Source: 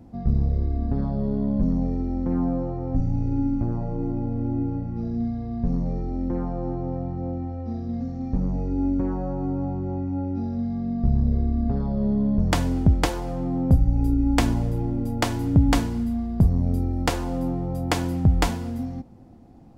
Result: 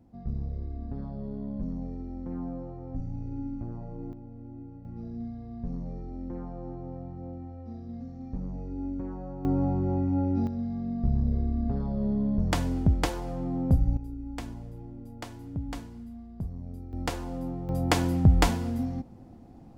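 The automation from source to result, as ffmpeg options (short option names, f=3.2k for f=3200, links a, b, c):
-af "asetnsamples=n=441:p=0,asendcmd='4.13 volume volume -18dB;4.85 volume volume -10.5dB;9.45 volume volume 1dB;10.47 volume volume -5dB;13.97 volume volume -17dB;16.93 volume volume -8dB;17.69 volume volume -0.5dB',volume=-11.5dB"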